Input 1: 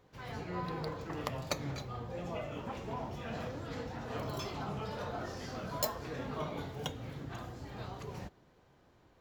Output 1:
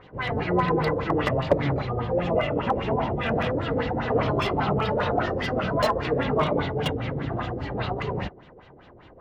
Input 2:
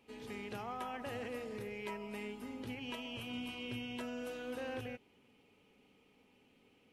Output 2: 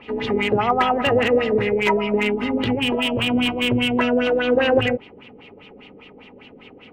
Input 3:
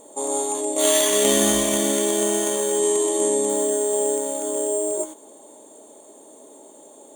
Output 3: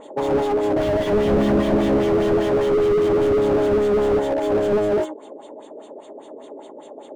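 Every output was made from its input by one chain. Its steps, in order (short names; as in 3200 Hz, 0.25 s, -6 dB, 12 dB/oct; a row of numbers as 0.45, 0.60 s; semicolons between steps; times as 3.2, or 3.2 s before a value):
small resonant body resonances 2000/2800 Hz, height 8 dB; LFO low-pass sine 5 Hz 420–3700 Hz; slew limiter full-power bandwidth 34 Hz; normalise peaks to -6 dBFS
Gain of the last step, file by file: +13.5, +21.5, +6.0 dB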